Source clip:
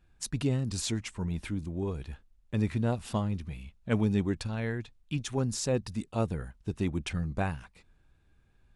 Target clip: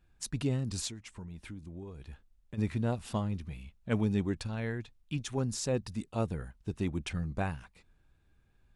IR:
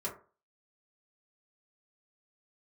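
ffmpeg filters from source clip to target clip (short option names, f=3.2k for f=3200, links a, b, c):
-filter_complex "[0:a]asplit=3[a][b][c];[a]afade=t=out:st=0.87:d=0.02[d];[b]acompressor=threshold=-39dB:ratio=6,afade=t=in:st=0.87:d=0.02,afade=t=out:st=2.57:d=0.02[e];[c]afade=t=in:st=2.57:d=0.02[f];[d][e][f]amix=inputs=3:normalize=0,volume=-2.5dB"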